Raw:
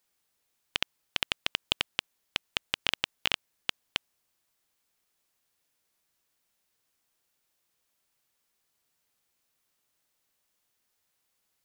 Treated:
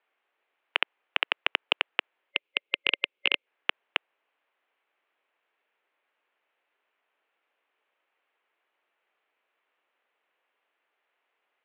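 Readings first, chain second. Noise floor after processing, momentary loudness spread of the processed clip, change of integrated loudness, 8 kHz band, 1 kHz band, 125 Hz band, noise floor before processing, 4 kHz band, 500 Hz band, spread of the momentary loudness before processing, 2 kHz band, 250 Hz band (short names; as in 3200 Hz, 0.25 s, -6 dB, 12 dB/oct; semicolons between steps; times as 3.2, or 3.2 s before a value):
-81 dBFS, 6 LU, +3.5 dB, under -30 dB, +5.0 dB, under -15 dB, -78 dBFS, +1.5 dB, +5.5 dB, 7 LU, +6.5 dB, -2.0 dB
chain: mistuned SSB -61 Hz 450–2900 Hz; spectral gain 2.31–3.46, 570–2100 Hz -10 dB; gain +7.5 dB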